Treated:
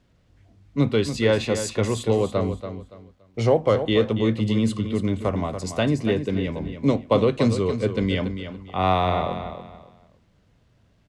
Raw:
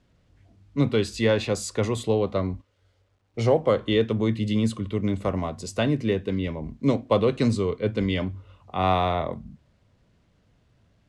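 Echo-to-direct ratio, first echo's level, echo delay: -9.0 dB, -9.5 dB, 284 ms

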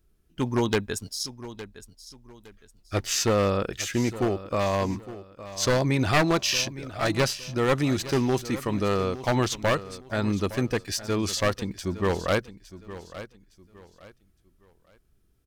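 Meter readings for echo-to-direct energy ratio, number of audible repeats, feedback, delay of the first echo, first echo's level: -14.5 dB, 2, 30%, 862 ms, -15.0 dB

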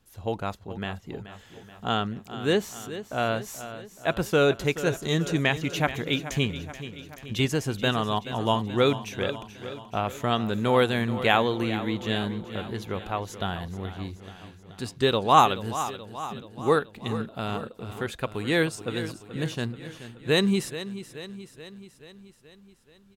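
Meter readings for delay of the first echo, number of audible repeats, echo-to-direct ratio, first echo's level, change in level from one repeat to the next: 429 ms, 5, -11.0 dB, -13.0 dB, -4.5 dB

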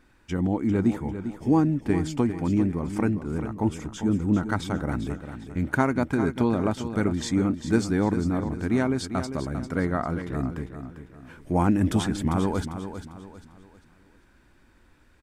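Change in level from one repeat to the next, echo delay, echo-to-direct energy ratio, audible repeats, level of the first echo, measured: -9.0 dB, 398 ms, -9.5 dB, 3, -10.0 dB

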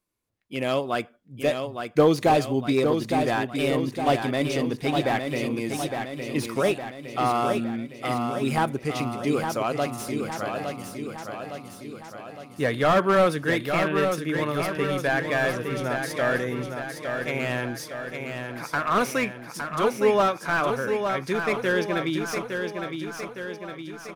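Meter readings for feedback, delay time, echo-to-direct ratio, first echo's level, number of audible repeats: 57%, 861 ms, -4.5 dB, -6.0 dB, 6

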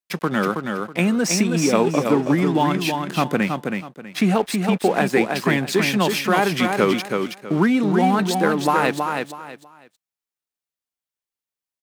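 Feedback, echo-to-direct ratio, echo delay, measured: 25%, -4.5 dB, 323 ms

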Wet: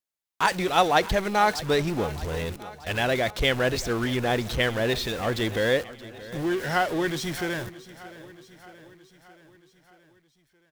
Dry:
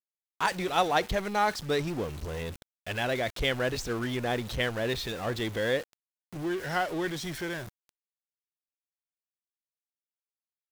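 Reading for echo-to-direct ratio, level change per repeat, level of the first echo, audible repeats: -15.5 dB, -4.5 dB, -17.5 dB, 4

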